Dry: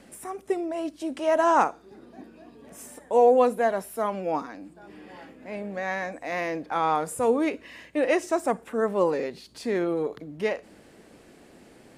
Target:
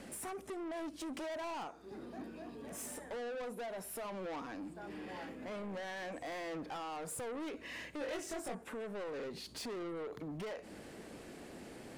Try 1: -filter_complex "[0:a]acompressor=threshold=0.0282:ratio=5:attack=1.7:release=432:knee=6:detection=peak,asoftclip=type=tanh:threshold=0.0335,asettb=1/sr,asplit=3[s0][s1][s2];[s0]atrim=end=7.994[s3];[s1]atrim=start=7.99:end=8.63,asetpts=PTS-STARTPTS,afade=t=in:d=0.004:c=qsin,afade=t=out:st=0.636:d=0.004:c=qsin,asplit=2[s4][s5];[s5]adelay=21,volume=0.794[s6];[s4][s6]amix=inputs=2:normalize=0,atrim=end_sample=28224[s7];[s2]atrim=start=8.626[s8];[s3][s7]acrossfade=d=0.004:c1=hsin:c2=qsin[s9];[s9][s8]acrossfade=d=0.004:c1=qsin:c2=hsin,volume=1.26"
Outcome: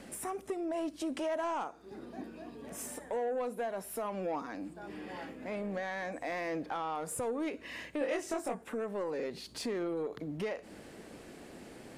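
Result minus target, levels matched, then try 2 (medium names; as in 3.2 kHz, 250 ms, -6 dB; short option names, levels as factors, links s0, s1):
saturation: distortion -12 dB
-filter_complex "[0:a]acompressor=threshold=0.0282:ratio=5:attack=1.7:release=432:knee=6:detection=peak,asoftclip=type=tanh:threshold=0.00841,asettb=1/sr,asplit=3[s0][s1][s2];[s0]atrim=end=7.994[s3];[s1]atrim=start=7.99:end=8.63,asetpts=PTS-STARTPTS,afade=t=in:d=0.004:c=qsin,afade=t=out:st=0.636:d=0.004:c=qsin,asplit=2[s4][s5];[s5]adelay=21,volume=0.794[s6];[s4][s6]amix=inputs=2:normalize=0,atrim=end_sample=28224[s7];[s2]atrim=start=8.626[s8];[s3][s7]acrossfade=d=0.004:c1=hsin:c2=qsin[s9];[s9][s8]acrossfade=d=0.004:c1=qsin:c2=hsin,volume=1.26"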